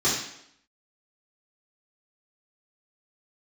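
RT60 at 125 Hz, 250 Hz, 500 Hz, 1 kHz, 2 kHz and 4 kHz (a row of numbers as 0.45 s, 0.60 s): 0.60 s, 0.80 s, 0.75 s, 0.75 s, 0.70 s, 0.70 s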